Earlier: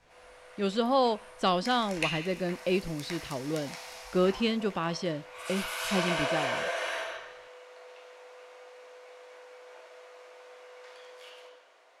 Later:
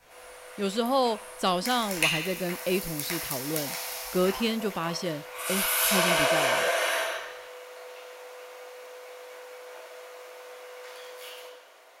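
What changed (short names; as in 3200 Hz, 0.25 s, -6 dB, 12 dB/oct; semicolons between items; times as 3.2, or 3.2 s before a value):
background: send +6.0 dB; master: remove air absorption 83 m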